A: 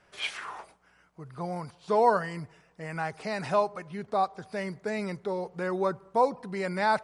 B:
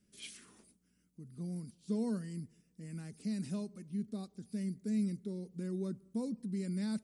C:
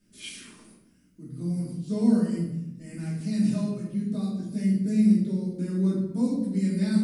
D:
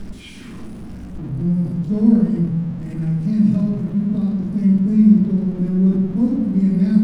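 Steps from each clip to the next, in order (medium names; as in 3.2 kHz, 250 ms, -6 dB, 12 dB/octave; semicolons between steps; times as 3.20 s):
FFT filter 150 Hz 0 dB, 220 Hz +12 dB, 830 Hz -27 dB, 11 kHz +9 dB; trim -7 dB
simulated room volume 280 m³, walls mixed, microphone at 2.7 m; trim +2 dB
jump at every zero crossing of -35.5 dBFS; RIAA curve playback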